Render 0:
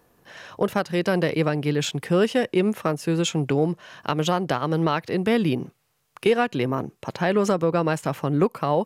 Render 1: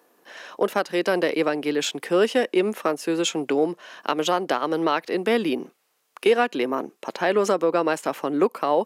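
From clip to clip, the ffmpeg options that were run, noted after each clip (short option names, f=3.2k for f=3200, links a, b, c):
-af "highpass=f=260:w=0.5412,highpass=f=260:w=1.3066,volume=1.5dB"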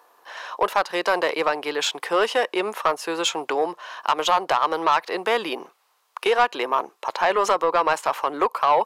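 -af "equalizer=f=125:t=o:w=1:g=-11,equalizer=f=250:t=o:w=1:g=-11,equalizer=f=1k:t=o:w=1:g=12,equalizer=f=4k:t=o:w=1:g=4,asoftclip=type=tanh:threshold=-10dB"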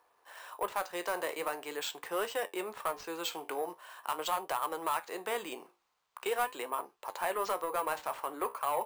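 -af "flanger=delay=9.5:depth=9.4:regen=-66:speed=0.43:shape=triangular,acrusher=samples=4:mix=1:aa=0.000001,volume=-9dB"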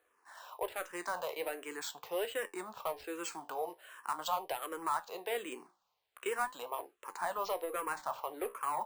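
-filter_complex "[0:a]asplit=2[a][b];[b]afreqshift=-1.3[c];[a][c]amix=inputs=2:normalize=1"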